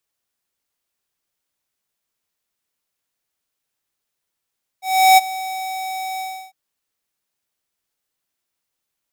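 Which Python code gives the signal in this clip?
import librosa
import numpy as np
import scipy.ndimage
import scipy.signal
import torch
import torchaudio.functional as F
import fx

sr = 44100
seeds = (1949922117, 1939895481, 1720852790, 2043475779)

y = fx.adsr_tone(sr, wave='square', hz=757.0, attack_ms=355.0, decay_ms=23.0, sustain_db=-18.0, held_s=1.38, release_ms=322.0, level_db=-8.5)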